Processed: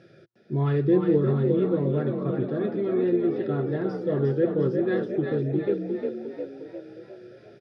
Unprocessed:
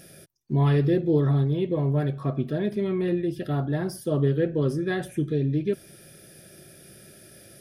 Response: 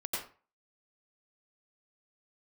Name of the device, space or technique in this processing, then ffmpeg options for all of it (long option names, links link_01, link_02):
frequency-shifting delay pedal into a guitar cabinet: -filter_complex "[0:a]asplit=8[link_01][link_02][link_03][link_04][link_05][link_06][link_07][link_08];[link_02]adelay=355,afreqshift=45,volume=-5dB[link_09];[link_03]adelay=710,afreqshift=90,volume=-10.2dB[link_10];[link_04]adelay=1065,afreqshift=135,volume=-15.4dB[link_11];[link_05]adelay=1420,afreqshift=180,volume=-20.6dB[link_12];[link_06]adelay=1775,afreqshift=225,volume=-25.8dB[link_13];[link_07]adelay=2130,afreqshift=270,volume=-31dB[link_14];[link_08]adelay=2485,afreqshift=315,volume=-36.2dB[link_15];[link_01][link_09][link_10][link_11][link_12][link_13][link_14][link_15]amix=inputs=8:normalize=0,highpass=99,equalizer=frequency=120:width_type=q:width=4:gain=8,equalizer=frequency=350:width_type=q:width=4:gain=9,equalizer=frequency=490:width_type=q:width=4:gain=6,equalizer=frequency=1400:width_type=q:width=4:gain=7,equalizer=frequency=3000:width_type=q:width=4:gain=-4,lowpass=frequency=4300:width=0.5412,lowpass=frequency=4300:width=1.3066,volume=-6dB"